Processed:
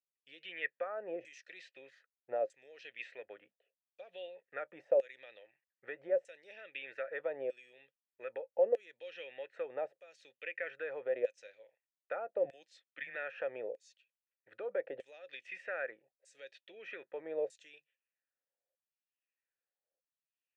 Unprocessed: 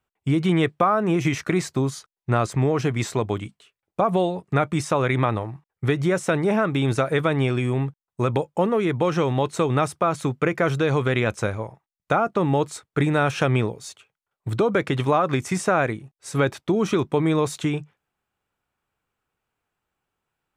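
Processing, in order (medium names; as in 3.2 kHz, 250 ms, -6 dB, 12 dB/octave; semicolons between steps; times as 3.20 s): LFO band-pass saw down 0.8 Hz 560–7900 Hz; 12.45–13.16 s: frequency shift -140 Hz; vowel filter e; trim +3 dB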